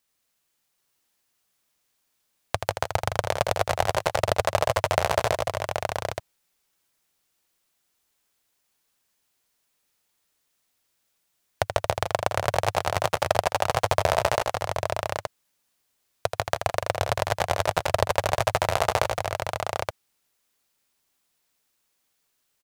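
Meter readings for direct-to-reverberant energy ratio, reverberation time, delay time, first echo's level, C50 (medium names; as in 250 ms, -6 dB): no reverb, no reverb, 81 ms, -7.5 dB, no reverb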